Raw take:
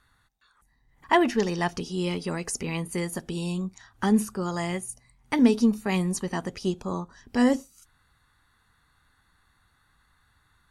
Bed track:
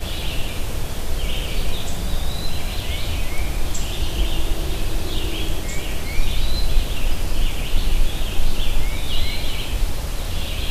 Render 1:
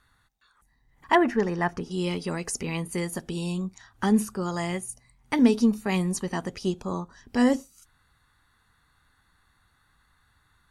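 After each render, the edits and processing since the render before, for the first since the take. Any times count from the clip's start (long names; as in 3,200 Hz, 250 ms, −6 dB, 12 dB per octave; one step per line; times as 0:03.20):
0:01.15–0:01.91: high shelf with overshoot 2,400 Hz −9.5 dB, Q 1.5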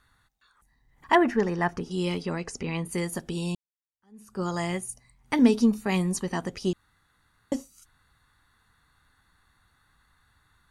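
0:02.22–0:02.85: high-frequency loss of the air 90 metres
0:03.55–0:04.40: fade in exponential
0:06.73–0:07.52: fill with room tone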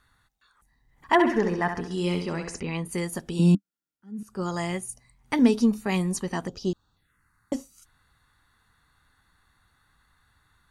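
0:01.12–0:02.60: flutter between parallel walls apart 11.6 metres, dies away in 0.53 s
0:03.39–0:04.23: hollow resonant body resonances 200/280/1,400 Hz, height 17 dB, ringing for 60 ms
0:06.47–0:07.53: phaser swept by the level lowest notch 500 Hz, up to 2,100 Hz, full sweep at −34 dBFS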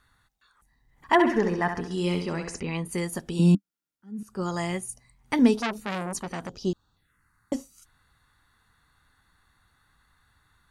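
0:05.57–0:06.62: saturating transformer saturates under 2,200 Hz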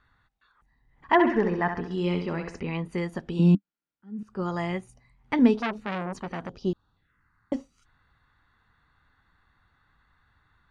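low-pass filter 3,000 Hz 12 dB per octave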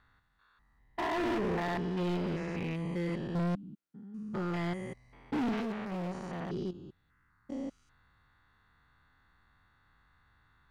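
spectrum averaged block by block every 200 ms
gain into a clipping stage and back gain 29.5 dB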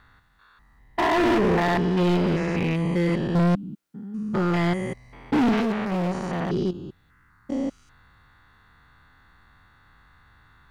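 level +11.5 dB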